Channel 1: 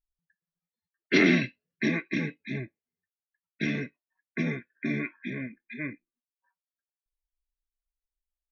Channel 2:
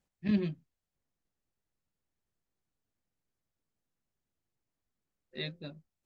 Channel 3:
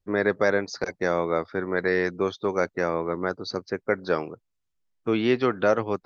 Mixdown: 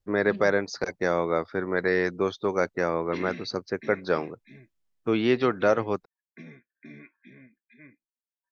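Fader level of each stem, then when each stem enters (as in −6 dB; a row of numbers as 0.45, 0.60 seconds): −16.5, −9.5, −0.5 decibels; 2.00, 0.00, 0.00 seconds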